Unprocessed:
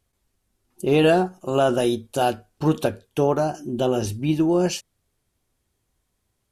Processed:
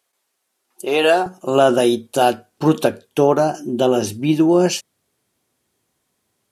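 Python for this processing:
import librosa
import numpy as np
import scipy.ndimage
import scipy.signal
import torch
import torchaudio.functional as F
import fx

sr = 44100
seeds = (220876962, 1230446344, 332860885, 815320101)

y = fx.highpass(x, sr, hz=fx.steps((0.0, 550.0), (1.26, 170.0)), slope=12)
y = y * librosa.db_to_amplitude(6.0)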